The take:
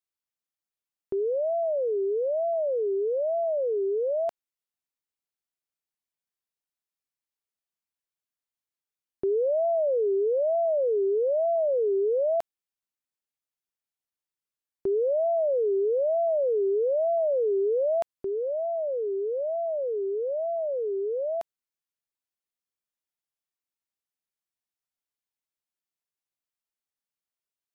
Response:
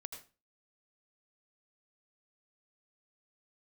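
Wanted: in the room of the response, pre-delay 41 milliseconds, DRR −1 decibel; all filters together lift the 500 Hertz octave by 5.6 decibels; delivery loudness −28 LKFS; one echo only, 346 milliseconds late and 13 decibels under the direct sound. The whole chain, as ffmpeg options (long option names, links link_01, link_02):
-filter_complex "[0:a]equalizer=frequency=500:width_type=o:gain=7,aecho=1:1:346:0.224,asplit=2[link_01][link_02];[1:a]atrim=start_sample=2205,adelay=41[link_03];[link_02][link_03]afir=irnorm=-1:irlink=0,volume=4.5dB[link_04];[link_01][link_04]amix=inputs=2:normalize=0,volume=-11dB"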